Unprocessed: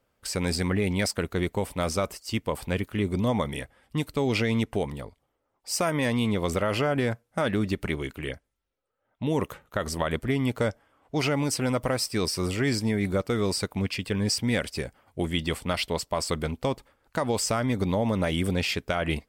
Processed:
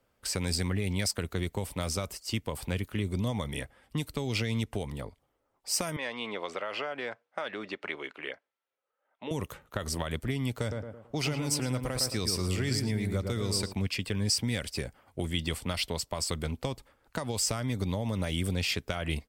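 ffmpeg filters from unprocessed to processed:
-filter_complex "[0:a]asettb=1/sr,asplit=3[a][b][c];[a]atrim=end=5.964[d];[b]atrim=start=5.96:end=9.31,asetpts=PTS-STARTPTS,afade=t=in:d=0.004:c=qsin,afade=t=out:st=3.346:d=0.004:c=qsin,highpass=550,lowpass=3.3k[e];[c]atrim=start=9.306[f];[d][e]acrossfade=d=0.004:c1=hsin:c2=qsin[g];[g][f]acrossfade=d=0.004:c1=qsin:c2=hsin,asplit=3[h][i][j];[h]afade=t=out:st=10.69:d=0.02[k];[i]asplit=2[l][m];[m]adelay=110,lowpass=f=1.5k:p=1,volume=-4.5dB,asplit=2[n][o];[o]adelay=110,lowpass=f=1.5k:p=1,volume=0.33,asplit=2[p][q];[q]adelay=110,lowpass=f=1.5k:p=1,volume=0.33,asplit=2[r][s];[s]adelay=110,lowpass=f=1.5k:p=1,volume=0.33[t];[l][n][p][r][t]amix=inputs=5:normalize=0,afade=t=in:st=10.69:d=0.02,afade=t=out:st=13.72:d=0.02[u];[j]afade=t=in:st=13.72:d=0.02[v];[k][u][v]amix=inputs=3:normalize=0,acrossover=split=130|3000[w][x][y];[x]acompressor=threshold=-32dB:ratio=6[z];[w][z][y]amix=inputs=3:normalize=0"

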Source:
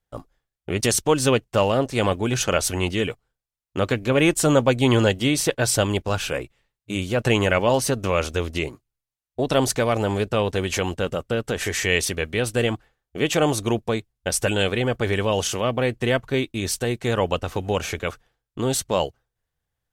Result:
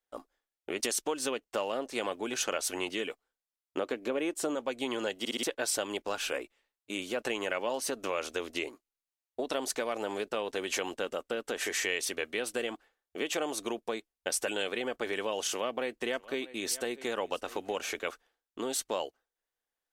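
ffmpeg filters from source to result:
-filter_complex "[0:a]asettb=1/sr,asplit=3[a][b][c];[a]atrim=end=3.774[d];[b]atrim=start=3.77:end=4.55,asetpts=PTS-STARTPTS,afade=t=in:d=0.004:c=qsin,afade=t=out:st=0.776:d=0.004:c=qsin,equalizer=f=390:t=o:w=2.8:g=7[e];[c]atrim=start=4.546[f];[d][e]acrossfade=d=0.004:c1=hsin:c2=qsin[g];[g][f]acrossfade=d=0.004:c1=qsin:c2=hsin,asettb=1/sr,asplit=3[h][i][j];[h]atrim=end=15.494[k];[i]atrim=start=15.49:end=17.78,asetpts=PTS-STARTPTS,afade=t=in:d=0.004:c=qsin,afade=t=out:st=2.286:d=0.004:c=qsin,aecho=1:1:641:0.0891,atrim=end_sample=100989[l];[j]atrim=start=17.776[m];[k][l]acrossfade=d=0.004:c1=hsin:c2=qsin[n];[n][m]acrossfade=d=0.004:c1=qsin:c2=hsin,asplit=5[o][p][q][r][s];[o]atrim=end=5.252[t];[p]atrim=start=5.188:end=5.252[u];[q]atrim=start=5.188:end=5.252[v];[r]atrim=start=5.188:end=5.252[w];[s]atrim=start=5.428[x];[t][u]acrossfade=d=0.004:c1=hsin:c2=hsin[y];[y][v]acrossfade=d=0.004:c1=hsin:c2=hsin[z];[z][w]acrossfade=d=0.004:c1=hsin:c2=hsin[aa];[aa][x]acrossfade=d=0.004:c1=hsin:c2=hsin,lowshelf=f=170:t=q:w=1.5:g=-13,acompressor=threshold=-21dB:ratio=6,equalizer=f=130:w=0.54:g=-11.5,volume=-5dB"

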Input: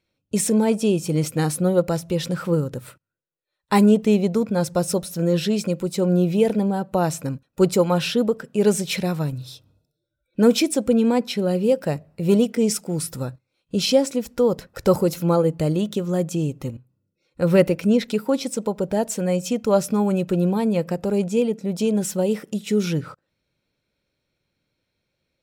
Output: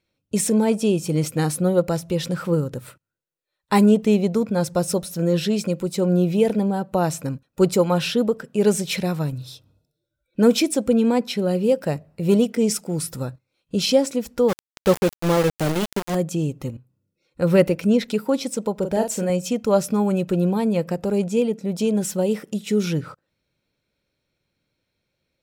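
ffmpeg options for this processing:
-filter_complex "[0:a]asplit=3[a][b][c];[a]afade=t=out:st=14.48:d=0.02[d];[b]aeval=exprs='val(0)*gte(abs(val(0)),0.0944)':c=same,afade=t=in:st=14.48:d=0.02,afade=t=out:st=16.14:d=0.02[e];[c]afade=t=in:st=16.14:d=0.02[f];[d][e][f]amix=inputs=3:normalize=0,asettb=1/sr,asplit=3[g][h][i];[g]atrim=end=18.784[j];[h]atrim=start=18.78:end=19.3,asetpts=PTS-STARTPTS,afade=t=in:d=0.004:c=qsin,afade=t=out:st=0.516:d=0.004:c=qsin,asplit=2[k][l];[l]adelay=42,volume=-6.5dB[m];[k][m]amix=inputs=2:normalize=0,atrim=end_sample=22932[n];[i]atrim=start=19.296[o];[j][n]acrossfade=d=0.004:c1=hsin:c2=qsin[p];[p][o]acrossfade=d=0.004:c1=qsin:c2=hsin"

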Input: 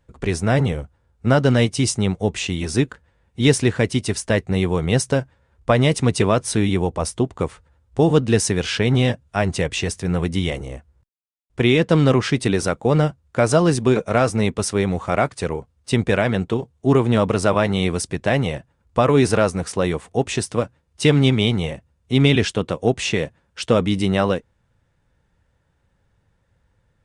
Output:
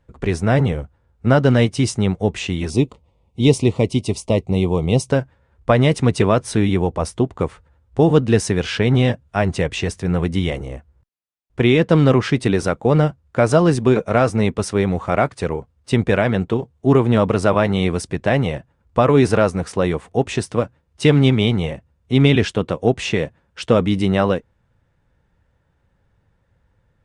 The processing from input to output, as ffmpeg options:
-filter_complex "[0:a]asettb=1/sr,asplit=3[a][b][c];[a]atrim=end=2.704[d];[b]atrim=start=2.7:end=5.1,asetpts=PTS-STARTPTS,afade=t=in:d=0.004:c=qsin,afade=t=out:st=2.396:d=0.004:c=qsin,asuperstop=centerf=1600:order=4:qfactor=1.3[e];[c]atrim=start=5.096[f];[d][e]acrossfade=d=0.004:c1=hsin:c2=qsin[g];[g][f]acrossfade=d=0.004:c1=qsin:c2=hsin,highshelf=f=4.1k:g=-8.5,volume=2dB"

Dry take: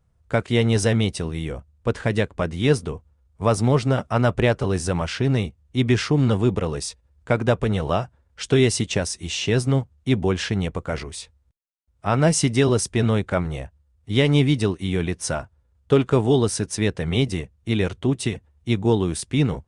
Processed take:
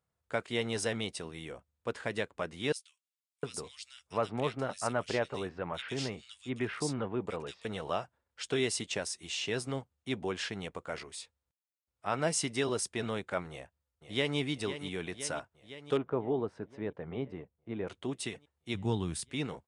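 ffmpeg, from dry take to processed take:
-filter_complex "[0:a]asettb=1/sr,asplit=3[a][b][c];[a]atrim=end=2.724[d];[b]atrim=start=2.72:end=7.65,asetpts=PTS-STARTPTS,afade=t=in:d=0.004:c=qsin,afade=t=out:st=4.926:d=0.004:c=qsin,acrossover=split=2600[e][f];[e]adelay=710[g];[g][f]amix=inputs=2:normalize=0,atrim=end_sample=217413[h];[c]atrim=start=7.646[i];[d][h]acrossfade=d=0.004:c1=hsin:c2=qsin[j];[j][i]acrossfade=d=0.004:c1=qsin:c2=hsin,asplit=2[k][l];[l]afade=t=in:st=13.5:d=0.01,afade=t=out:st=14.37:d=0.01,aecho=0:1:510|1020|1530|2040|2550|3060|3570|4080|4590|5100:0.298538|0.208977|0.146284|0.102399|0.071679|0.0501753|0.0351227|0.0245859|0.0172101|0.0120471[m];[k][m]amix=inputs=2:normalize=0,asettb=1/sr,asplit=3[n][o][p];[n]atrim=end=15.974[q];[o]atrim=start=15.97:end=17.88,asetpts=PTS-STARTPTS,afade=t=in:d=0.004:c=qsin,afade=t=out:st=1.906:d=0.004:c=qsin,lowpass=1.1k[r];[p]atrim=start=17.876[s];[q][r]acrossfade=d=0.004:c1=hsin:c2=qsin[t];[t][s]acrossfade=d=0.004:c1=qsin:c2=hsin,asplit=3[u][v][w];[u]afade=t=out:st=18.74:d=0.02[x];[v]asubboost=boost=5.5:cutoff=170,afade=t=in:st=18.74:d=0.02,afade=t=out:st=19.29:d=0.02[y];[w]afade=t=in:st=19.29:d=0.02[z];[x][y][z]amix=inputs=3:normalize=0,highpass=f=500:p=1,bandreject=f=5.9k:w=18,volume=-8.5dB"

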